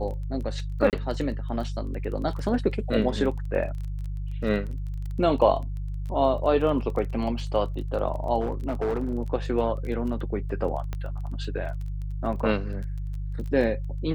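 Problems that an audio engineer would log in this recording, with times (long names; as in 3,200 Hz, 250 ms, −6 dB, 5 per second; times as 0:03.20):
surface crackle 18 per second −34 dBFS
mains hum 50 Hz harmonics 3 −31 dBFS
0:00.90–0:00.93: drop-out 28 ms
0:08.40–0:09.12: clipping −22.5 dBFS
0:10.93: click −19 dBFS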